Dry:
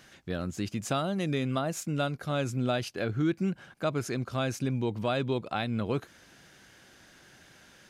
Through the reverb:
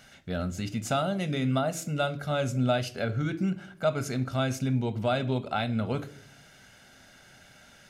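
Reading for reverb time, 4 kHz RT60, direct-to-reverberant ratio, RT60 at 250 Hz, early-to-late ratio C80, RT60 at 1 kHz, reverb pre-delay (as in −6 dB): 0.50 s, 0.40 s, 9.0 dB, 0.75 s, 21.5 dB, 0.40 s, 4 ms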